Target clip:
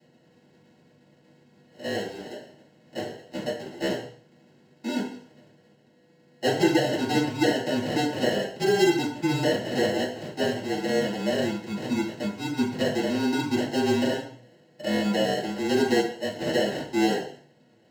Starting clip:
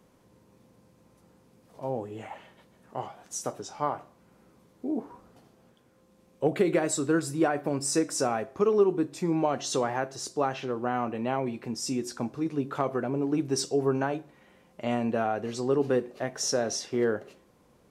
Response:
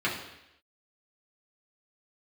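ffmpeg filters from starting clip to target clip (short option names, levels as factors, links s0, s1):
-filter_complex "[0:a]afreqshift=-27,acrusher=samples=37:mix=1:aa=0.000001[s0];[1:a]atrim=start_sample=2205,asetrate=74970,aresample=44100[s1];[s0][s1]afir=irnorm=-1:irlink=0,volume=0.668"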